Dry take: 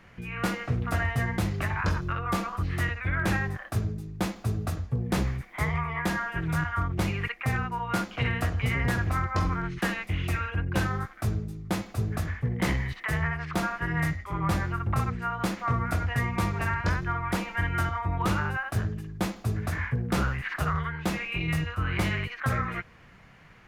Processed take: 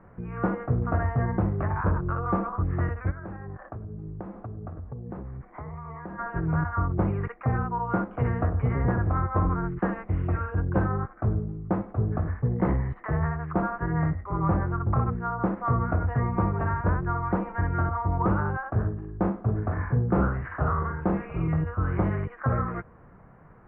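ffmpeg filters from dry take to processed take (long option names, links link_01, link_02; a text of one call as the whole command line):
ffmpeg -i in.wav -filter_complex "[0:a]asplit=3[link_01][link_02][link_03];[link_01]afade=type=out:start_time=3.1:duration=0.02[link_04];[link_02]acompressor=threshold=-36dB:ratio=12:attack=3.2:release=140:knee=1:detection=peak,afade=type=in:start_time=3.1:duration=0.02,afade=type=out:start_time=6.18:duration=0.02[link_05];[link_03]afade=type=in:start_time=6.18:duration=0.02[link_06];[link_04][link_05][link_06]amix=inputs=3:normalize=0,asettb=1/sr,asplit=3[link_07][link_08][link_09];[link_07]atrim=end=18.774[link_10];[link_08]atrim=start=18.77:end=21.48,asetpts=PTS-STARTPTS,afade=type=in:duration=0.004:curve=qsin,afade=type=out:start_time=2.706:duration=0.004:curve=qsin,aecho=1:1:41|696:0.531|0.141,atrim=end_sample=119511[link_11];[link_09]atrim=start=21.476[link_12];[link_10][link_11]acrossfade=duration=0.004:curve1=hsin:curve2=qsin[link_13];[link_13][link_12]acrossfade=duration=0.004:curve1=qsin:curve2=hsin,lowpass=frequency=1300:width=0.5412,lowpass=frequency=1300:width=1.3066,equalizer=frequency=440:width=1.5:gain=3,acontrast=71,volume=-4dB" out.wav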